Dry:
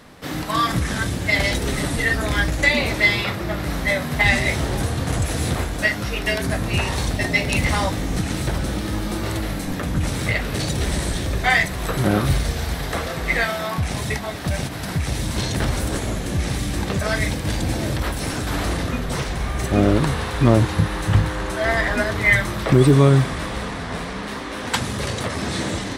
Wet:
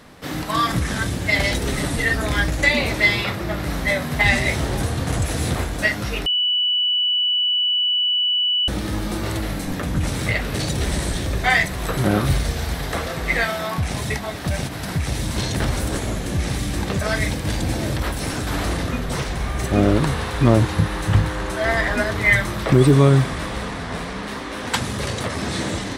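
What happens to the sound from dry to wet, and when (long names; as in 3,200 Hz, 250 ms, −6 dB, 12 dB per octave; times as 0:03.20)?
0:06.26–0:08.68: beep over 2,960 Hz −16.5 dBFS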